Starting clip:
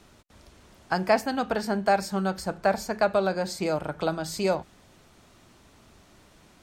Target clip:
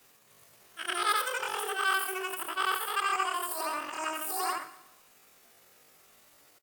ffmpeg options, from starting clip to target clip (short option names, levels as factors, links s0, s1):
-af "afftfilt=real='re':imag='-im':win_size=8192:overlap=0.75,aemphasis=mode=production:type=bsi,asetrate=85689,aresample=44100,atempo=0.514651,aecho=1:1:121|242|363|484:0.15|0.0643|0.0277|0.0119"